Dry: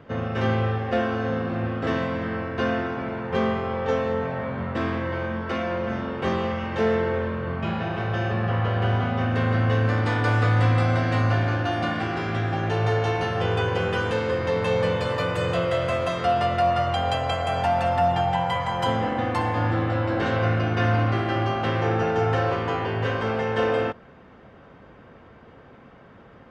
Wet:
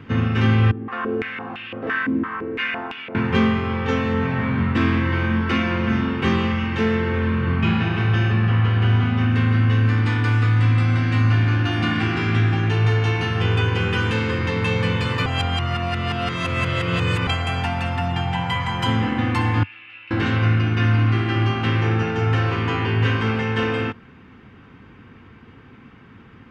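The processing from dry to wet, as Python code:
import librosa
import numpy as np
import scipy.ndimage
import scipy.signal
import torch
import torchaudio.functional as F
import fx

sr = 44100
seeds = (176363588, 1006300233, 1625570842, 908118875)

y = fx.filter_held_bandpass(x, sr, hz=5.9, low_hz=300.0, high_hz=3000.0, at=(0.71, 3.15))
y = fx.bandpass_q(y, sr, hz=2600.0, q=8.7, at=(19.63, 20.11))
y = fx.edit(y, sr, fx.reverse_span(start_s=15.26, length_s=2.01), tone=tone)
y = fx.peak_eq(y, sr, hz=570.0, db=-6.0, octaves=0.44)
y = fx.rider(y, sr, range_db=10, speed_s=0.5)
y = fx.graphic_eq_15(y, sr, hz=(100, 250, 630, 2500), db=(6, 5, -10, 6))
y = F.gain(torch.from_numpy(y), 2.5).numpy()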